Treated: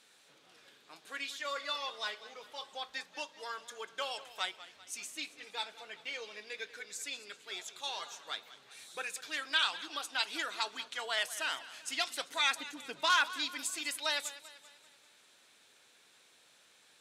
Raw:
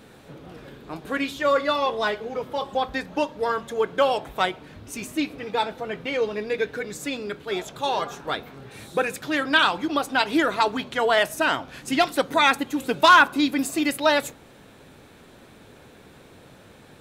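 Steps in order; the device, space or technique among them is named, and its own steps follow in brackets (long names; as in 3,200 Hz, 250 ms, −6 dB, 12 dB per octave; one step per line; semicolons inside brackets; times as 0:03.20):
piezo pickup straight into a mixer (low-pass filter 7,000 Hz 12 dB per octave; first difference)
0:12.58–0:13.10: spectral tilt −2.5 dB per octave
feedback echo with a swinging delay time 195 ms, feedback 50%, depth 96 cents, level −16 dB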